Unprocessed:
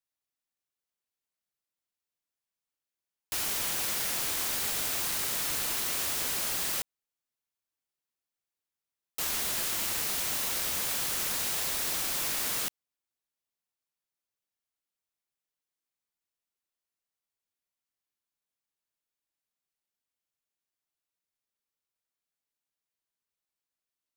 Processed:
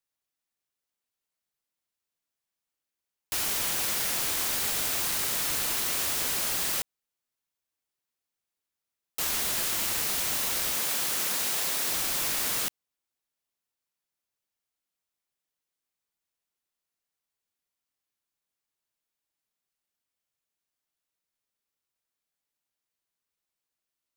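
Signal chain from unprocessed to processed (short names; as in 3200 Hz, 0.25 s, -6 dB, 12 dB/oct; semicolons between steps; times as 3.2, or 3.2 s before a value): 10.72–11.91 HPF 160 Hz 12 dB/oct; gain +2.5 dB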